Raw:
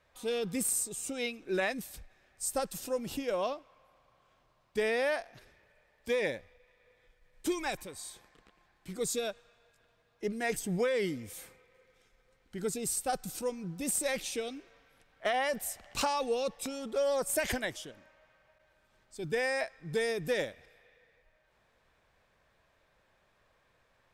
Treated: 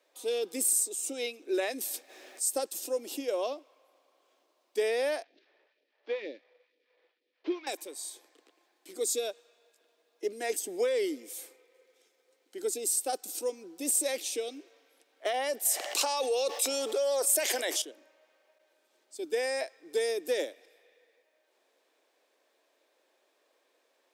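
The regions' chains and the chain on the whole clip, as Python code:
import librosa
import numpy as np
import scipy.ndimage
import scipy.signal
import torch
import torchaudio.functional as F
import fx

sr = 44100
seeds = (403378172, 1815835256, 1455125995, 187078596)

y = fx.chain(x, sr, fx.hum_notches(base_hz=60, count=3),
    fx.env_flatten(amount_pct=50), at=(1.73, 2.48))
y = fx.chain(y, sr, fx.cvsd(bps=32000),
    fx.phaser_stages(stages=2, low_hz=100.0, high_hz=1100.0, hz=2.1, feedback_pct=30),
    fx.air_absorb(metres=380.0), at=(5.23, 7.67))
y = fx.chain(y, sr, fx.highpass(hz=480.0, slope=12),
    fx.env_flatten(amount_pct=70), at=(15.65, 17.82))
y = scipy.signal.sosfilt(scipy.signal.butter(8, 290.0, 'highpass', fs=sr, output='sos'), y)
y = fx.peak_eq(y, sr, hz=1400.0, db=-11.5, octaves=2.1)
y = y * 10.0 ** (5.5 / 20.0)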